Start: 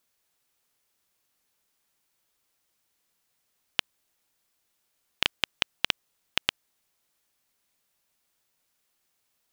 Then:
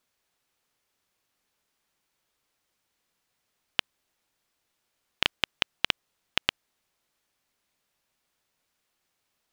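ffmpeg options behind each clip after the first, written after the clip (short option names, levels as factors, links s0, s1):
-af "highshelf=f=6800:g=-9,volume=1.19"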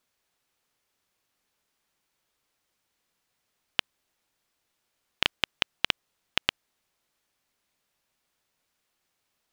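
-af anull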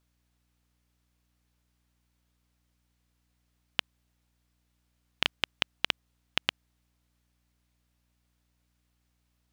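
-af "aeval=exprs='val(0)+0.000282*(sin(2*PI*60*n/s)+sin(2*PI*2*60*n/s)/2+sin(2*PI*3*60*n/s)/3+sin(2*PI*4*60*n/s)/4+sin(2*PI*5*60*n/s)/5)':c=same,volume=0.75"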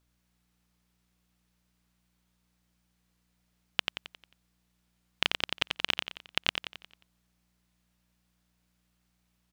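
-af "aecho=1:1:89|178|267|356|445|534:0.562|0.259|0.119|0.0547|0.0252|0.0116"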